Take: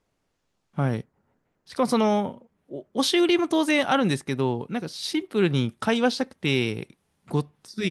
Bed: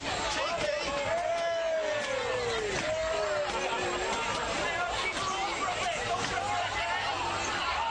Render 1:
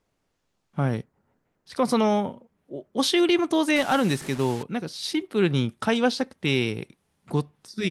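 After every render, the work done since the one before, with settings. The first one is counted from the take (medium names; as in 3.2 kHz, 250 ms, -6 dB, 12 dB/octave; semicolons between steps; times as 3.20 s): 3.76–4.63 s: one-bit delta coder 64 kbps, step -32.5 dBFS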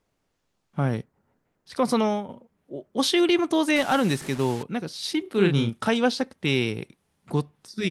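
1.86–2.29 s: fade out equal-power, to -12 dB; 5.22–5.89 s: doubling 35 ms -5 dB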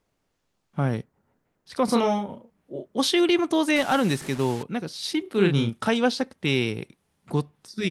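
1.85–2.97 s: doubling 30 ms -4 dB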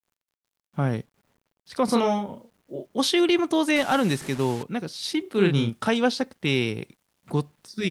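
bit crusher 11-bit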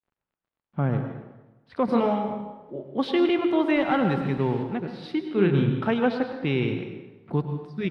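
distance through air 420 m; plate-style reverb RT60 1.1 s, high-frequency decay 0.75×, pre-delay 85 ms, DRR 6 dB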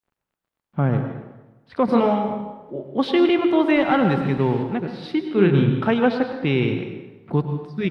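trim +4.5 dB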